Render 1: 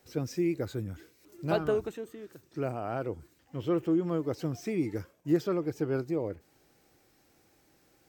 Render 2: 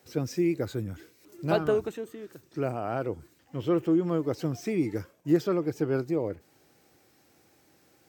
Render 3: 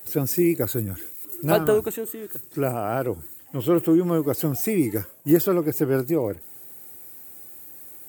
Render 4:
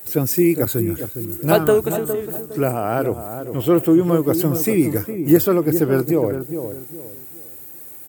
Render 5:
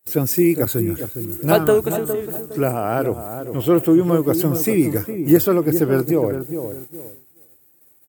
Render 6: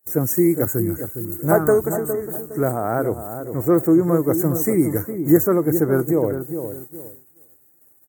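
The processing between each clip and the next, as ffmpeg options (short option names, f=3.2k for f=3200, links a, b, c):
-af "highpass=78,volume=3dB"
-af "aexciter=amount=10.6:drive=4.1:freq=8k,volume=5.5dB"
-filter_complex "[0:a]asplit=2[a][b];[b]adelay=410,lowpass=f=930:p=1,volume=-8dB,asplit=2[c][d];[d]adelay=410,lowpass=f=930:p=1,volume=0.34,asplit=2[e][f];[f]adelay=410,lowpass=f=930:p=1,volume=0.34,asplit=2[g][h];[h]adelay=410,lowpass=f=930:p=1,volume=0.34[i];[a][c][e][g][i]amix=inputs=5:normalize=0,volume=4.5dB"
-af "agate=range=-28dB:threshold=-34dB:ratio=16:detection=peak"
-af "asuperstop=centerf=3500:order=12:qfactor=0.93,volume=-1dB"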